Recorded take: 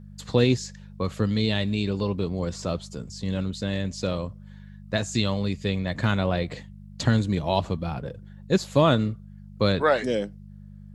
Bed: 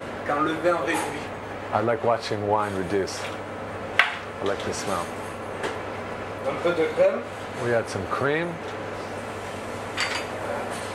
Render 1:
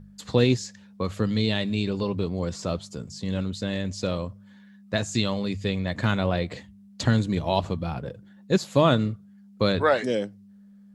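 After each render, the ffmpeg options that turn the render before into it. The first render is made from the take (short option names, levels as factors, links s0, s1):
-af "bandreject=f=50:t=h:w=4,bandreject=f=100:t=h:w=4,bandreject=f=150:t=h:w=4"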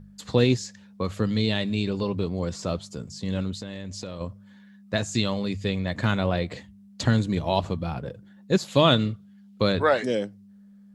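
-filter_complex "[0:a]asettb=1/sr,asplit=3[s0][s1][s2];[s0]atrim=end=3.594[s3];[s1]atrim=start=3.59:end=4.21,asetpts=PTS-STARTPTS,afade=t=in:d=0.004:c=qsin,afade=t=out:st=0.616:d=0.004:c=qsin,acompressor=threshold=0.0251:ratio=4:attack=3.2:release=140:knee=1:detection=peak[s4];[s2]atrim=start=4.206[s5];[s3][s4]acrossfade=d=0.004:c1=hsin:c2=qsin[s6];[s6][s5]acrossfade=d=0.004:c1=qsin:c2=hsin,asettb=1/sr,asplit=3[s7][s8][s9];[s7]atrim=end=8.684[s10];[s8]atrim=start=8.68:end=9.62,asetpts=PTS-STARTPTS,afade=t=in:d=0.004:c=qsin,afade=t=out:st=0.936:d=0.004:c=qsin,equalizer=f=3300:t=o:w=0.97:g=8.5[s11];[s9]atrim=start=9.616[s12];[s10][s11]acrossfade=d=0.004:c1=hsin:c2=qsin[s13];[s13][s12]acrossfade=d=0.004:c1=qsin:c2=hsin"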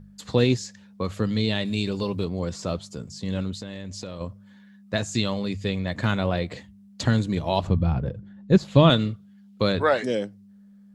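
-filter_complex "[0:a]asettb=1/sr,asplit=3[s0][s1][s2];[s0]atrim=end=1.654[s3];[s1]atrim=start=1.65:end=2.25,asetpts=PTS-STARTPTS,afade=t=in:d=0.004:c=qsin,afade=t=out:st=0.596:d=0.004:c=qsin,aemphasis=mode=production:type=cd[s4];[s2]atrim=start=2.246[s5];[s3][s4]acrossfade=d=0.004:c1=hsin:c2=qsin[s6];[s6][s5]acrossfade=d=0.004:c1=qsin:c2=hsin,asettb=1/sr,asplit=3[s7][s8][s9];[s7]atrim=end=7.674[s10];[s8]atrim=start=7.67:end=8.9,asetpts=PTS-STARTPTS,afade=t=in:d=0.004:c=qsin,afade=t=out:st=1.226:d=0.004:c=qsin,aemphasis=mode=reproduction:type=bsi[s11];[s9]atrim=start=8.896[s12];[s10][s11]acrossfade=d=0.004:c1=hsin:c2=qsin[s13];[s13][s12]acrossfade=d=0.004:c1=qsin:c2=hsin"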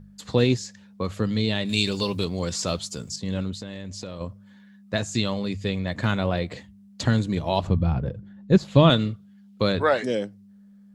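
-filter_complex "[0:a]asettb=1/sr,asplit=3[s0][s1][s2];[s0]atrim=end=1.694[s3];[s1]atrim=start=1.69:end=3.16,asetpts=PTS-STARTPTS,afade=t=in:d=0.004:c=qsin,afade=t=out:st=1.466:d=0.004:c=qsin,highshelf=f=2000:g=11.5[s4];[s2]atrim=start=3.156[s5];[s3][s4]acrossfade=d=0.004:c1=hsin:c2=qsin[s6];[s6][s5]acrossfade=d=0.004:c1=qsin:c2=hsin"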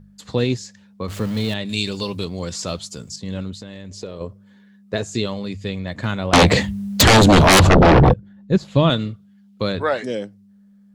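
-filter_complex "[0:a]asettb=1/sr,asplit=3[s0][s1][s2];[s0]atrim=end=1.084[s3];[s1]atrim=start=1.08:end=1.54,asetpts=PTS-STARTPTS,afade=t=in:d=0.004:c=qsin,afade=t=out:st=0.456:d=0.004:c=qsin,aeval=exprs='val(0)+0.5*0.0316*sgn(val(0))':c=same[s4];[s2]atrim=start=1.536[s5];[s3][s4]acrossfade=d=0.004:c1=hsin:c2=qsin[s6];[s6][s5]acrossfade=d=0.004:c1=qsin:c2=hsin,asettb=1/sr,asplit=3[s7][s8][s9];[s7]atrim=end=3.914[s10];[s8]atrim=start=3.91:end=5.26,asetpts=PTS-STARTPTS,afade=t=in:d=0.004:c=qsin,afade=t=out:st=1.346:d=0.004:c=qsin,equalizer=f=420:w=3.3:g=12[s11];[s9]atrim=start=5.256[s12];[s10][s11]acrossfade=d=0.004:c1=hsin:c2=qsin[s13];[s13][s12]acrossfade=d=0.004:c1=qsin:c2=hsin,asettb=1/sr,asplit=3[s14][s15][s16];[s14]atrim=end=6.334[s17];[s15]atrim=start=6.33:end=8.14,asetpts=PTS-STARTPTS,afade=t=in:d=0.004:c=qsin,afade=t=out:st=1.806:d=0.004:c=qsin,aeval=exprs='0.447*sin(PI/2*10*val(0)/0.447)':c=same[s18];[s16]atrim=start=8.136[s19];[s17][s18]acrossfade=d=0.004:c1=hsin:c2=qsin[s20];[s20][s19]acrossfade=d=0.004:c1=qsin:c2=hsin"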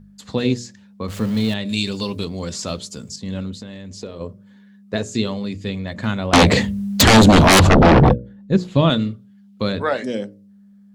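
-af "equalizer=f=230:t=o:w=0.35:g=6.5,bandreject=f=60:t=h:w=6,bandreject=f=120:t=h:w=6,bandreject=f=180:t=h:w=6,bandreject=f=240:t=h:w=6,bandreject=f=300:t=h:w=6,bandreject=f=360:t=h:w=6,bandreject=f=420:t=h:w=6,bandreject=f=480:t=h:w=6,bandreject=f=540:t=h:w=6,bandreject=f=600:t=h:w=6"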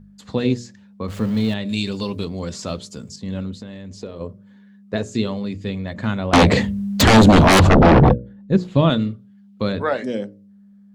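-af "equalizer=f=16000:t=o:w=2.2:g=-6.5"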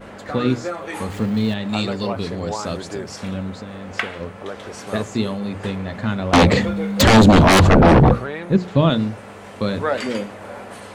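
-filter_complex "[1:a]volume=0.531[s0];[0:a][s0]amix=inputs=2:normalize=0"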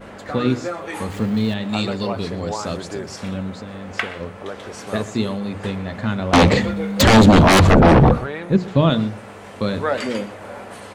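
-filter_complex "[0:a]asplit=2[s0][s1];[s1]adelay=122.4,volume=0.126,highshelf=f=4000:g=-2.76[s2];[s0][s2]amix=inputs=2:normalize=0"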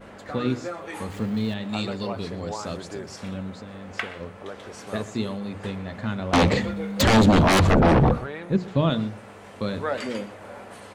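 -af "volume=0.501"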